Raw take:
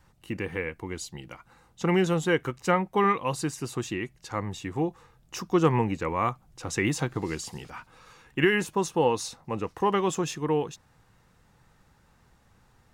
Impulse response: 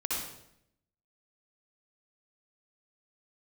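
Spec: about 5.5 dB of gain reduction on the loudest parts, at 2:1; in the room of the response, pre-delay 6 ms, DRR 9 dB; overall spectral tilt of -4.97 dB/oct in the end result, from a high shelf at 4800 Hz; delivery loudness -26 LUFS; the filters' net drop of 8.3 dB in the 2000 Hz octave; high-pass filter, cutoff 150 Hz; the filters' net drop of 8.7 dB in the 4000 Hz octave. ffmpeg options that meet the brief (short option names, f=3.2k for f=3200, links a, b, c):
-filter_complex "[0:a]highpass=150,equalizer=f=2k:t=o:g=-8,equalizer=f=4k:t=o:g=-6,highshelf=f=4.8k:g=-6,acompressor=threshold=-28dB:ratio=2,asplit=2[a][b];[1:a]atrim=start_sample=2205,adelay=6[c];[b][c]afir=irnorm=-1:irlink=0,volume=-14.5dB[d];[a][d]amix=inputs=2:normalize=0,volume=6.5dB"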